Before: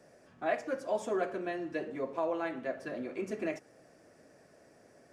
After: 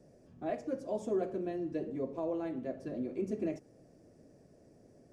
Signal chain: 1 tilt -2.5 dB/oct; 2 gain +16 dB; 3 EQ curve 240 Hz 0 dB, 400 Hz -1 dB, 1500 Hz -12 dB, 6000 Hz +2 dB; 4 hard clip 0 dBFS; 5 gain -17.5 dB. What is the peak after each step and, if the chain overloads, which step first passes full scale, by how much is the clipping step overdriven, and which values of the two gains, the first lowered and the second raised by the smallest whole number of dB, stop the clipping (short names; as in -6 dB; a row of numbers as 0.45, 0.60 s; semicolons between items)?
-18.0, -2.0, -5.0, -5.0, -22.5 dBFS; no overload